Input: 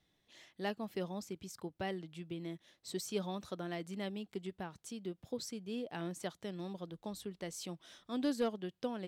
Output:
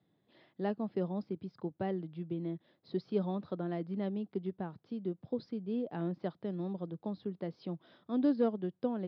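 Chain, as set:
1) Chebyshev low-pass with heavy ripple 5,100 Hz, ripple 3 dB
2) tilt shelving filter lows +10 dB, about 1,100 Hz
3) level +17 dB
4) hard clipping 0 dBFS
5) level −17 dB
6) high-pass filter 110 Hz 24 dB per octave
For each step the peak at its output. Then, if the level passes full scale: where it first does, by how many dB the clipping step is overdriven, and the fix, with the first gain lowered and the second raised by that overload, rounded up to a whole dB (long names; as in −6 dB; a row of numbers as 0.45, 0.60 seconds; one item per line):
−26.0, −20.0, −3.0, −3.0, −20.0, −19.5 dBFS
no step passes full scale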